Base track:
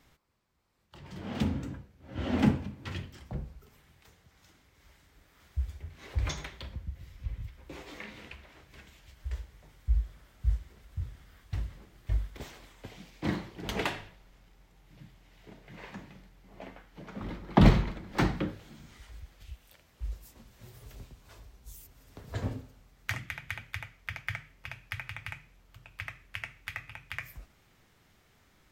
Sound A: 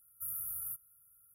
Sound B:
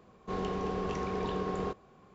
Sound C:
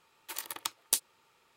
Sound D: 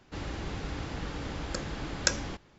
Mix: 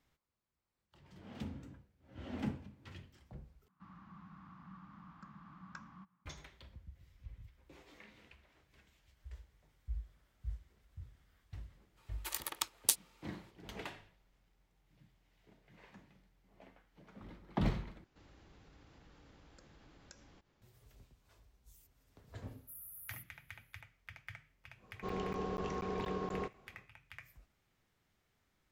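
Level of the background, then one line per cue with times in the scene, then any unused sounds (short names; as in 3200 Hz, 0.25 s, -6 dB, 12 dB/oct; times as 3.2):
base track -14 dB
3.68 replace with D -6.5 dB + double band-pass 460 Hz, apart 2.6 oct
11.96 add C -1.5 dB, fades 0.02 s
18.04 replace with D -14.5 dB + compressor 2:1, threshold -52 dBFS
22.47 add A -11.5 dB + bell 1600 Hz -6.5 dB 2.1 oct
24.75 add B -5 dB, fades 0.10 s + crackling interface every 0.24 s zero, from 0.34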